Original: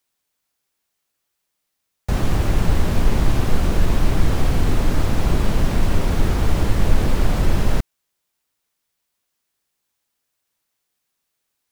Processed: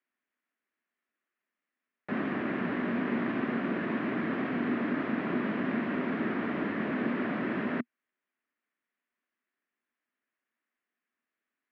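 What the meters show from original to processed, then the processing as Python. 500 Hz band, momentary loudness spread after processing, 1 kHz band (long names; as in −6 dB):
−7.0 dB, 2 LU, −7.5 dB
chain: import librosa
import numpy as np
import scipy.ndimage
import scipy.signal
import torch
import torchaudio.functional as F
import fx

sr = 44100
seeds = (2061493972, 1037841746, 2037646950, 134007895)

y = fx.cabinet(x, sr, low_hz=220.0, low_slope=24, high_hz=2400.0, hz=(240.0, 500.0, 840.0, 1800.0), db=(7, -6, -8, 5))
y = y * librosa.db_to_amplitude(-4.5)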